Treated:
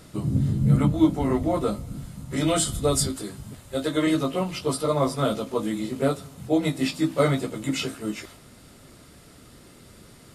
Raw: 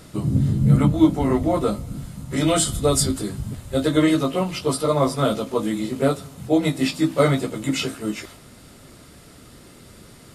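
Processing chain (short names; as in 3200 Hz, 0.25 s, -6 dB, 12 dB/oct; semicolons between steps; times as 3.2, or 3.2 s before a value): 3.08–4.07 low shelf 220 Hz -9 dB; gain -3.5 dB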